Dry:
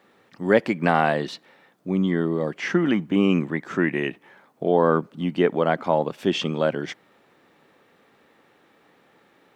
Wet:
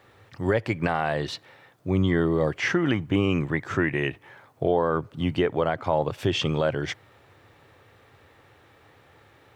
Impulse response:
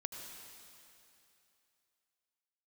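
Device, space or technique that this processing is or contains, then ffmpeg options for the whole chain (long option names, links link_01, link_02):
car stereo with a boomy subwoofer: -af "lowshelf=frequency=140:width_type=q:width=3:gain=11.5,alimiter=limit=-14.5dB:level=0:latency=1:release=284,volume=3dB"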